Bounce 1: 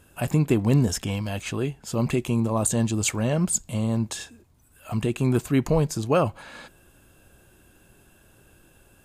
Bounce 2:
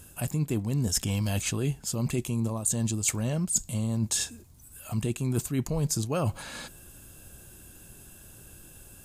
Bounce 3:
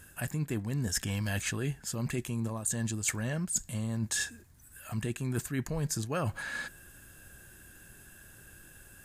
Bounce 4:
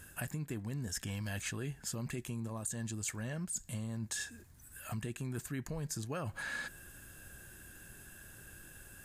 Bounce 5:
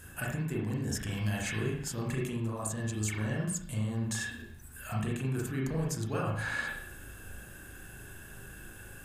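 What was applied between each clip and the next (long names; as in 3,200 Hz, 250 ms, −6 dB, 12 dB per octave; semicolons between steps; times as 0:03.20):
bass and treble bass +6 dB, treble +12 dB; reversed playback; downward compressor 12 to 1, threshold −24 dBFS, peak gain reduction 17 dB; reversed playback
parametric band 1,700 Hz +14 dB 0.57 octaves; level −5 dB
downward compressor, threshold −36 dBFS, peak gain reduction 10.5 dB
convolution reverb RT60 0.60 s, pre-delay 35 ms, DRR −4 dB; level +1.5 dB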